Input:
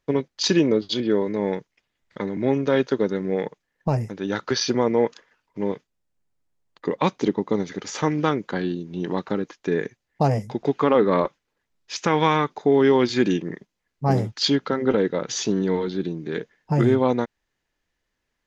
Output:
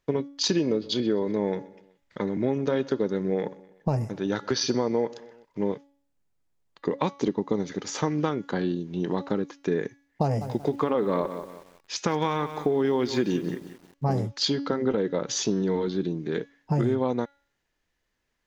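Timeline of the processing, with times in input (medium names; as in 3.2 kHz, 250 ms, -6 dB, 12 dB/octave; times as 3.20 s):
0.53–5.72 s: feedback delay 126 ms, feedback 52%, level -23.5 dB
10.23–14.11 s: bit-crushed delay 182 ms, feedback 35%, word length 7-bit, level -14.5 dB
whole clip: compression, threshold -20 dBFS; dynamic bell 2.1 kHz, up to -4 dB, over -46 dBFS, Q 1; de-hum 281.2 Hz, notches 22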